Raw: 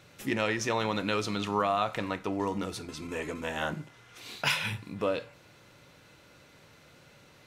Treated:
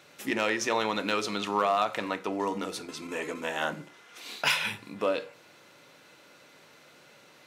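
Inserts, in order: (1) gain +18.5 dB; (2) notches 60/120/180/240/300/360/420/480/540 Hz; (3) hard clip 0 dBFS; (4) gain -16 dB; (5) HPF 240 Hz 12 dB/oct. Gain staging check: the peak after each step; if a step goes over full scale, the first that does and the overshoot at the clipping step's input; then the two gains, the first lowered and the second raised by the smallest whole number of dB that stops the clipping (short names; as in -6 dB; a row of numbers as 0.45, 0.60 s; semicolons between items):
+4.5, +4.5, 0.0, -16.0, -12.5 dBFS; step 1, 4.5 dB; step 1 +13.5 dB, step 4 -11 dB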